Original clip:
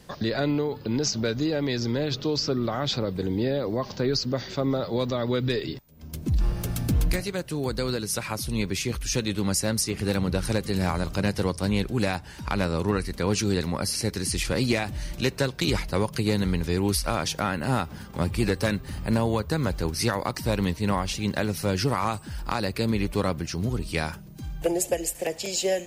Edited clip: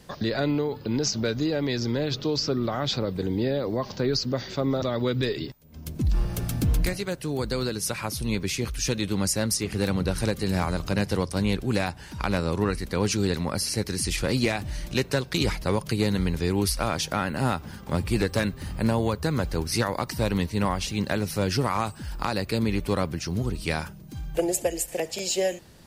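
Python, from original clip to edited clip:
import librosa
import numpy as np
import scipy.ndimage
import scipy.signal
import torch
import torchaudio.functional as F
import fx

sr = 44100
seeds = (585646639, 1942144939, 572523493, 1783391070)

y = fx.edit(x, sr, fx.cut(start_s=4.82, length_s=0.27), tone=tone)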